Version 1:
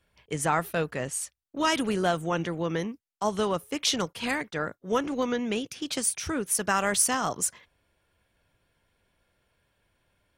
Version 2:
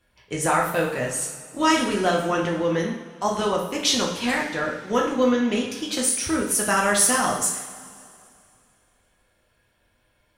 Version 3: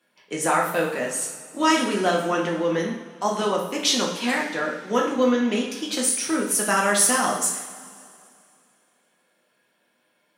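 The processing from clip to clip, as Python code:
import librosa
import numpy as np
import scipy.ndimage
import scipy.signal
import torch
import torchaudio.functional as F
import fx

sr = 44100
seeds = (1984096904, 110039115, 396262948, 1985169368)

y1 = fx.rev_double_slope(x, sr, seeds[0], early_s=0.61, late_s=2.5, knee_db=-15, drr_db=-2.0)
y1 = F.gain(torch.from_numpy(y1), 1.5).numpy()
y2 = scipy.signal.sosfilt(scipy.signal.butter(6, 170.0, 'highpass', fs=sr, output='sos'), y1)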